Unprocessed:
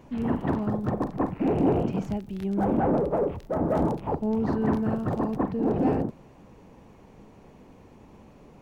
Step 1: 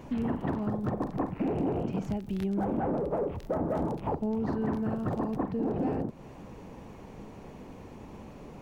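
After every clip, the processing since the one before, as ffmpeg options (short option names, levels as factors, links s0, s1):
-af "acompressor=threshold=0.02:ratio=4,volume=1.78"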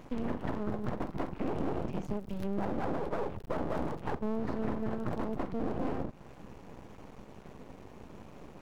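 -af "aeval=exprs='max(val(0),0)':c=same"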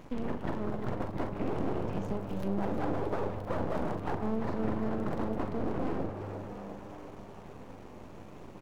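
-filter_complex "[0:a]asplit=2[s0][s1];[s1]adelay=41,volume=0.266[s2];[s0][s2]amix=inputs=2:normalize=0,asplit=8[s3][s4][s5][s6][s7][s8][s9][s10];[s4]adelay=347,afreqshift=100,volume=0.355[s11];[s5]adelay=694,afreqshift=200,volume=0.207[s12];[s6]adelay=1041,afreqshift=300,volume=0.119[s13];[s7]adelay=1388,afreqshift=400,volume=0.0692[s14];[s8]adelay=1735,afreqshift=500,volume=0.0403[s15];[s9]adelay=2082,afreqshift=600,volume=0.0232[s16];[s10]adelay=2429,afreqshift=700,volume=0.0135[s17];[s3][s11][s12][s13][s14][s15][s16][s17]amix=inputs=8:normalize=0"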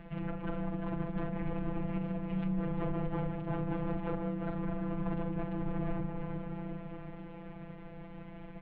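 -af "alimiter=level_in=1.06:limit=0.0631:level=0:latency=1:release=82,volume=0.944,afftfilt=real='hypot(re,im)*cos(PI*b)':imag='0':win_size=1024:overlap=0.75,highpass=f=160:t=q:w=0.5412,highpass=f=160:t=q:w=1.307,lowpass=f=3500:t=q:w=0.5176,lowpass=f=3500:t=q:w=0.7071,lowpass=f=3500:t=q:w=1.932,afreqshift=-360,volume=2.24"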